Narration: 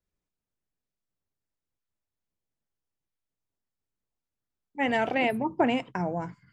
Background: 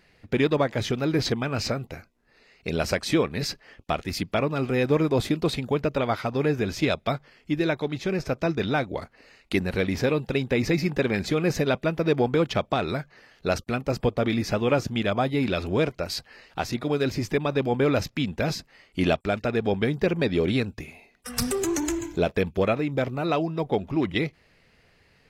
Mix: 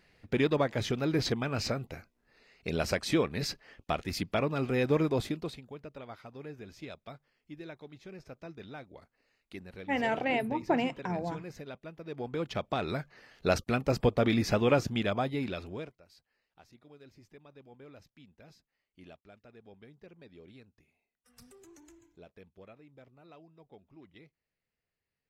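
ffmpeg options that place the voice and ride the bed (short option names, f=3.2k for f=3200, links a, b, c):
-filter_complex "[0:a]adelay=5100,volume=-4dB[a];[1:a]volume=13.5dB,afade=t=out:st=5.03:d=0.59:silence=0.16788,afade=t=in:st=12.07:d=1.39:silence=0.11885,afade=t=out:st=14.62:d=1.37:silence=0.0398107[b];[a][b]amix=inputs=2:normalize=0"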